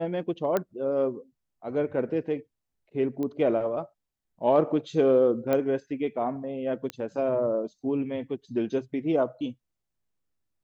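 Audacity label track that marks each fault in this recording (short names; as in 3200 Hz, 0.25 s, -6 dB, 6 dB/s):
0.570000	0.570000	pop -13 dBFS
3.230000	3.230000	pop -21 dBFS
5.530000	5.530000	pop -14 dBFS
6.900000	6.900000	pop -18 dBFS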